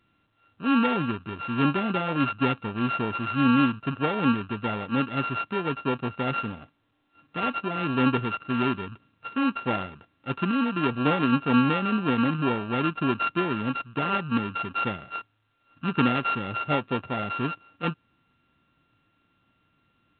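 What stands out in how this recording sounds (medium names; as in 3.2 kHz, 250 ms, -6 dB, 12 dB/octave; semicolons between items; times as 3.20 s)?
a buzz of ramps at a fixed pitch in blocks of 32 samples; A-law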